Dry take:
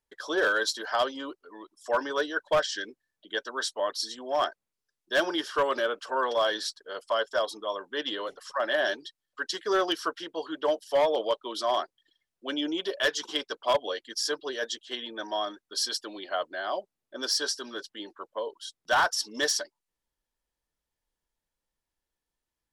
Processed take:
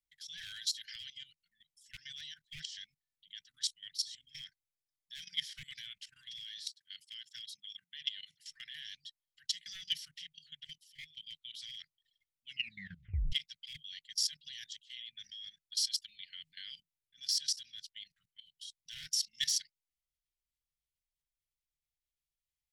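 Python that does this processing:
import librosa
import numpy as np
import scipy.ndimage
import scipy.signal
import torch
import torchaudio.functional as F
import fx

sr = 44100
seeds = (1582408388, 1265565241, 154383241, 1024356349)

y = fx.notch(x, sr, hz=2800.0, q=11.0, at=(4.31, 5.87))
y = fx.highpass(y, sr, hz=130.0, slope=12, at=(6.46, 8.47))
y = fx.edit(y, sr, fx.fade_out_to(start_s=9.82, length_s=1.35, curve='qsin', floor_db=-15.0),
    fx.tape_stop(start_s=12.47, length_s=0.85), tone=tone)
y = scipy.signal.sosfilt(scipy.signal.cheby1(5, 1.0, [160.0, 2000.0], 'bandstop', fs=sr, output='sos'), y)
y = fx.level_steps(y, sr, step_db=16)
y = y * 10.0 ** (1.0 / 20.0)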